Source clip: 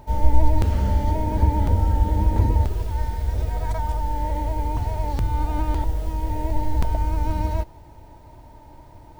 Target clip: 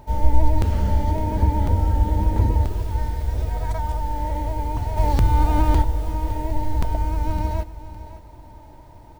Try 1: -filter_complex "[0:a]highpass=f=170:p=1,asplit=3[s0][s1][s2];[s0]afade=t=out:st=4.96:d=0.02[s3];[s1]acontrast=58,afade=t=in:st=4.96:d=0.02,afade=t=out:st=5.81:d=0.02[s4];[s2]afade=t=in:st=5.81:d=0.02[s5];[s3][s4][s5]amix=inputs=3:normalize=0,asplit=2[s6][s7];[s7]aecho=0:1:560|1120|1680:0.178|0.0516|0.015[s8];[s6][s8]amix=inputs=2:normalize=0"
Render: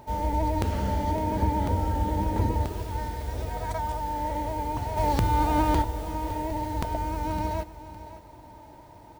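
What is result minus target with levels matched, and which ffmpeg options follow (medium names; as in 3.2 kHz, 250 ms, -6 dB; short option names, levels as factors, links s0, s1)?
125 Hz band -2.5 dB
-filter_complex "[0:a]asplit=3[s0][s1][s2];[s0]afade=t=out:st=4.96:d=0.02[s3];[s1]acontrast=58,afade=t=in:st=4.96:d=0.02,afade=t=out:st=5.81:d=0.02[s4];[s2]afade=t=in:st=5.81:d=0.02[s5];[s3][s4][s5]amix=inputs=3:normalize=0,asplit=2[s6][s7];[s7]aecho=0:1:560|1120|1680:0.178|0.0516|0.015[s8];[s6][s8]amix=inputs=2:normalize=0"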